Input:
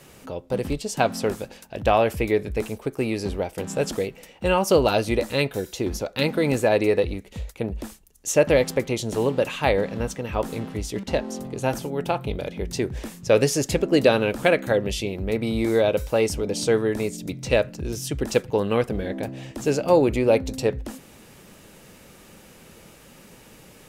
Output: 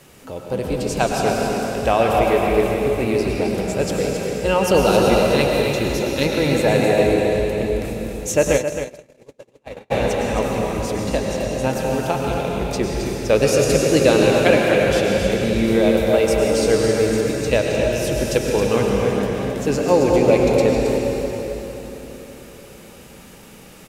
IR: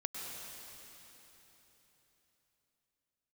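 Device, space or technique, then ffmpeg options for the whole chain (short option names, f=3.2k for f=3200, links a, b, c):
cave: -filter_complex "[0:a]aecho=1:1:272:0.2[a];[1:a]atrim=start_sample=2205[b];[a][b]afir=irnorm=-1:irlink=0,asplit=3[c][d][e];[c]afade=t=out:st=8.56:d=0.02[f];[d]agate=range=-50dB:threshold=-16dB:ratio=16:detection=peak,afade=t=in:st=8.56:d=0.02,afade=t=out:st=9.9:d=0.02[g];[e]afade=t=in:st=9.9:d=0.02[h];[f][g][h]amix=inputs=3:normalize=0,aecho=1:1:267:0.355,volume=3.5dB"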